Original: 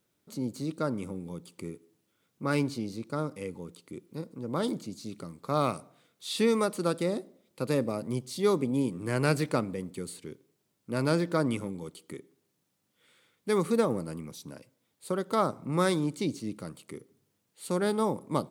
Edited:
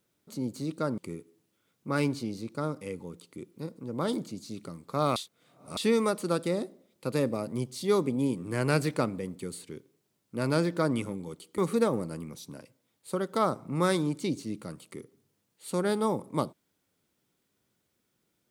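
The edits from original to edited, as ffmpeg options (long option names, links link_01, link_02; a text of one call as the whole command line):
ffmpeg -i in.wav -filter_complex "[0:a]asplit=5[link_01][link_02][link_03][link_04][link_05];[link_01]atrim=end=0.982[link_06];[link_02]atrim=start=1.528:end=5.712[link_07];[link_03]atrim=start=5.708:end=6.322,asetpts=PTS-STARTPTS,areverse[link_08];[link_04]atrim=start=6.318:end=12.132[link_09];[link_05]atrim=start=13.548[link_10];[link_06][link_07]acrossfade=duration=0.004:curve1=hsin:curve2=hsin[link_11];[link_11][link_08]acrossfade=duration=0.004:curve1=hsin:curve2=hsin[link_12];[link_12][link_09]acrossfade=duration=0.004:curve1=hsin:curve2=hsin[link_13];[link_13][link_10]acrossfade=duration=0.004:curve1=hsin:curve2=hsin" out.wav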